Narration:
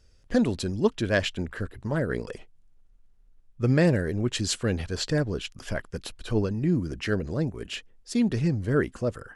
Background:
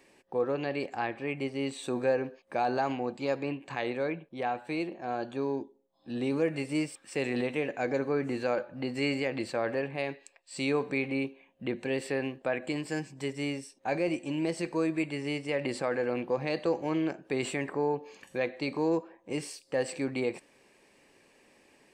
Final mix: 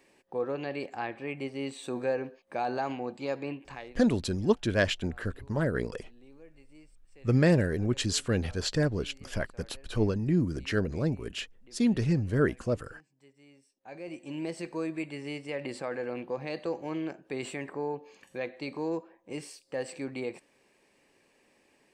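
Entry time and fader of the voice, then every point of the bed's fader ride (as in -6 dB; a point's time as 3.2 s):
3.65 s, -1.5 dB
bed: 3.68 s -2.5 dB
4.07 s -25.5 dB
13.46 s -25.5 dB
14.36 s -4.5 dB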